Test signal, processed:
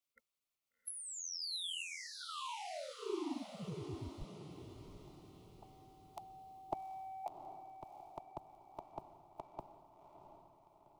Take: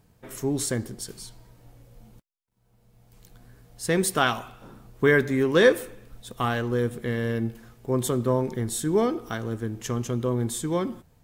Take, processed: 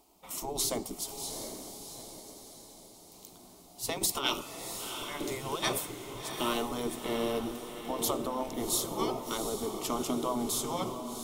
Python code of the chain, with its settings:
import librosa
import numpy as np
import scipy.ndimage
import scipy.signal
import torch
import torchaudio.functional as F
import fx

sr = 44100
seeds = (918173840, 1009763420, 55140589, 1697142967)

p1 = fx.fixed_phaser(x, sr, hz=330.0, stages=8)
p2 = fx.over_compress(p1, sr, threshold_db=-27.0, ratio=-0.5)
p3 = fx.spec_gate(p2, sr, threshold_db=-10, keep='weak')
p4 = fx.dynamic_eq(p3, sr, hz=360.0, q=1.3, threshold_db=-53.0, ratio=4.0, max_db=5)
p5 = p4 + fx.echo_diffused(p4, sr, ms=732, feedback_pct=49, wet_db=-7.5, dry=0)
y = p5 * 10.0 ** (4.5 / 20.0)